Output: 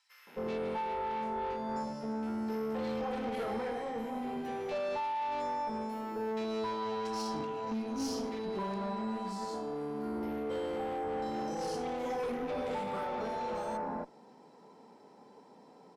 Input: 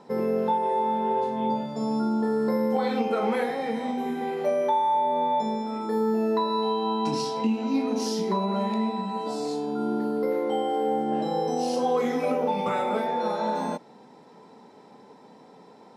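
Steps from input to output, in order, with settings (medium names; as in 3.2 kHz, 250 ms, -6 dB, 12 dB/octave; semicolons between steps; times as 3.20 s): bass shelf 89 Hz -10.5 dB; band-stop 3.7 kHz, Q 7.3; valve stage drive 27 dB, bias 0.35; bands offset in time highs, lows 270 ms, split 1.9 kHz; trim -4.5 dB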